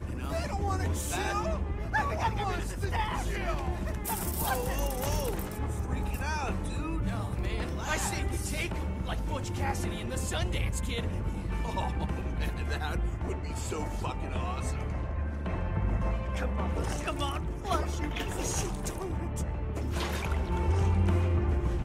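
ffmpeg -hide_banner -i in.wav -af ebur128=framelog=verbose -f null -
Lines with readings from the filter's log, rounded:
Integrated loudness:
  I:         -32.3 LUFS
  Threshold: -42.3 LUFS
Loudness range:
  LRA:         2.3 LU
  Threshold: -52.7 LUFS
  LRA low:   -33.8 LUFS
  LRA high:  -31.5 LUFS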